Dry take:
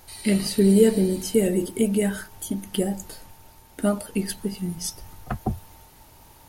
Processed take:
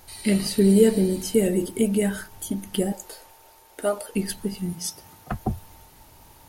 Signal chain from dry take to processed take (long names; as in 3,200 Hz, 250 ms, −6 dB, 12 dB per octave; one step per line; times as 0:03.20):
0:02.92–0:04.15: low shelf with overshoot 300 Hz −12.5 dB, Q 1.5
0:04.73–0:05.32: high-pass filter 140 Hz 12 dB per octave